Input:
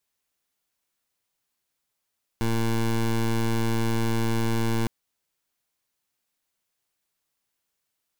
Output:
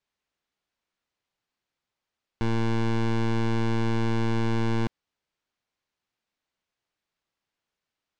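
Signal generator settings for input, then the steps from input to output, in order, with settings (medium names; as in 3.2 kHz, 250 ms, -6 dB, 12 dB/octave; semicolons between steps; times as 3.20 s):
pulse 114 Hz, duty 18% -23.5 dBFS 2.46 s
distance through air 130 m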